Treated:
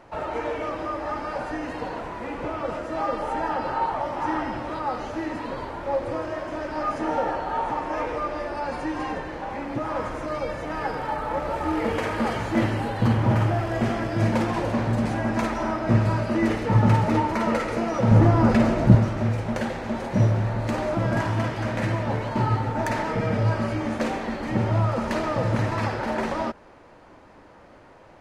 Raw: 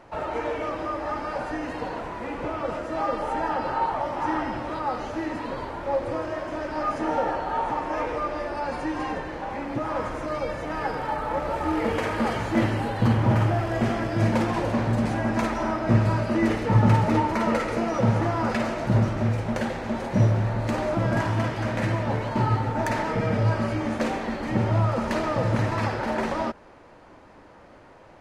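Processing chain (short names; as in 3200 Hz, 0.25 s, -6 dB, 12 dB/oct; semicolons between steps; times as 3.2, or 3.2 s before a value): 18.11–18.95 low shelf 450 Hz +11.5 dB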